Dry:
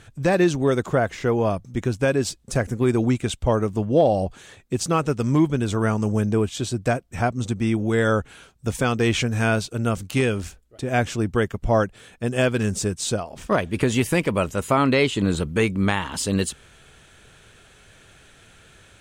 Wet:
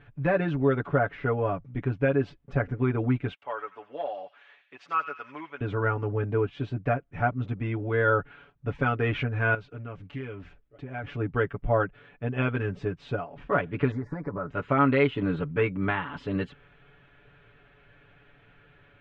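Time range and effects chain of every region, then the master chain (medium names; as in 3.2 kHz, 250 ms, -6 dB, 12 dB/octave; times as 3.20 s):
3.33–5.61 s: high-pass 1 kHz + feedback echo behind a high-pass 89 ms, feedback 49%, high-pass 2.3 kHz, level -7 dB
9.54–11.04 s: treble shelf 7.1 kHz +9.5 dB + compression 2.5:1, threshold -33 dBFS + loudspeaker Doppler distortion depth 0.12 ms
13.91–14.50 s: Chebyshev band-stop 1.5–5.4 kHz + compression 10:1, threshold -22 dBFS
whole clip: low-pass 2.6 kHz 24 dB/octave; dynamic bell 1.4 kHz, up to +6 dB, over -44 dBFS, Q 4.6; comb 7 ms, depth 90%; trim -7.5 dB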